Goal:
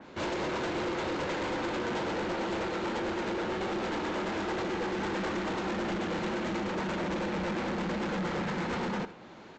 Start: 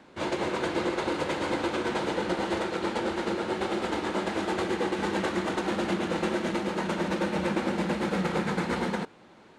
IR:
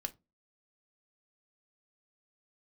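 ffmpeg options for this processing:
-af "aresample=16000,asoftclip=type=tanh:threshold=0.0188,aresample=44100,aecho=1:1:77:0.168,adynamicequalizer=threshold=0.00158:dfrequency=3000:dqfactor=0.7:tfrequency=3000:tqfactor=0.7:attack=5:release=100:ratio=0.375:range=2:mode=cutabove:tftype=highshelf,volume=1.68"

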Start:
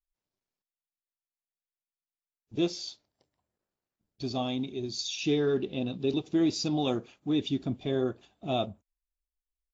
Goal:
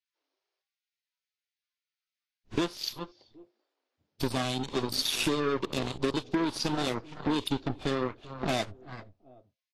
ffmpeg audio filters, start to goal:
-filter_complex "[0:a]lowpass=f=5200:w=0.5412,lowpass=f=5200:w=1.3066,asplit=2[s0][s1];[s1]adelay=385,lowpass=f=880:p=1,volume=0.133,asplit=2[s2][s3];[s3]adelay=385,lowpass=f=880:p=1,volume=0.26[s4];[s0][s2][s4]amix=inputs=3:normalize=0,asplit=2[s5][s6];[s6]asoftclip=type=tanh:threshold=0.0422,volume=0.708[s7];[s5][s7]amix=inputs=2:normalize=0,acompressor=threshold=0.0224:ratio=12,acrossover=split=180[s8][s9];[s8]aeval=exprs='max(val(0),0)':c=same[s10];[s9]aeval=exprs='0.0473*(cos(1*acos(clip(val(0)/0.0473,-1,1)))-cos(1*PI/2))+0.00473*(cos(3*acos(clip(val(0)/0.0473,-1,1)))-cos(3*PI/2))+0.000376*(cos(6*acos(clip(val(0)/0.0473,-1,1)))-cos(6*PI/2))+0.00841*(cos(7*acos(clip(val(0)/0.0473,-1,1)))-cos(7*PI/2))':c=same[s11];[s10][s11]amix=inputs=2:normalize=0,volume=2.66" -ar 32000 -c:a libvorbis -b:a 32k

